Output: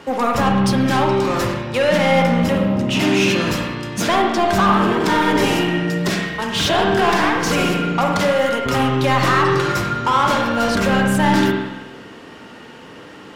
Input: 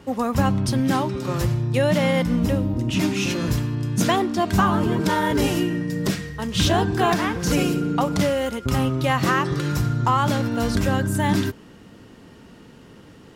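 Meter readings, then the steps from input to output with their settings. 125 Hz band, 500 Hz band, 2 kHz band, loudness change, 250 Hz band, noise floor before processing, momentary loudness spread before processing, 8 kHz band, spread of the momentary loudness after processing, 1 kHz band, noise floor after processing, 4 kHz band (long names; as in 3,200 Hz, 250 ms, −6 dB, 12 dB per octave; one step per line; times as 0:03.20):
−0.5 dB, +6.0 dB, +8.0 dB, +4.5 dB, +3.5 dB, −47 dBFS, 5 LU, +3.0 dB, 6 LU, +7.0 dB, −39 dBFS, +6.5 dB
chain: mid-hump overdrive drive 20 dB, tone 3,900 Hz, clips at −7.5 dBFS
spring reverb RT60 1.2 s, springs 46/56 ms, chirp 75 ms, DRR 1.5 dB
level −2.5 dB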